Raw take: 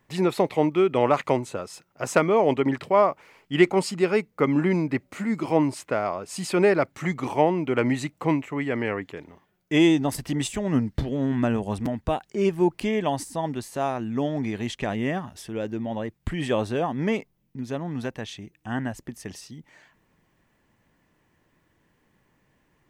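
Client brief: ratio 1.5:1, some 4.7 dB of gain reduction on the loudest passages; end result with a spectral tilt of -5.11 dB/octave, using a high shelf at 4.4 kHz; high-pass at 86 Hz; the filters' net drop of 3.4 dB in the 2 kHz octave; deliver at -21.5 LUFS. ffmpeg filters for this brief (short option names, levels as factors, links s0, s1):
-af "highpass=86,equalizer=f=2000:t=o:g=-6,highshelf=f=4400:g=9,acompressor=threshold=0.0562:ratio=1.5,volume=2.11"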